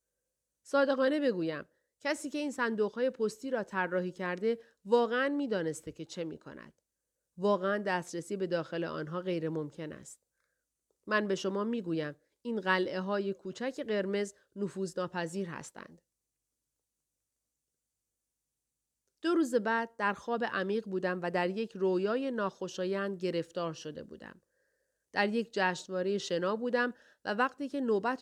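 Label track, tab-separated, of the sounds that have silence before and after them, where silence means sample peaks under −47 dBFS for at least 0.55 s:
0.670000	6.690000	sound
7.380000	10.140000	sound
11.070000	15.930000	sound
19.230000	24.320000	sound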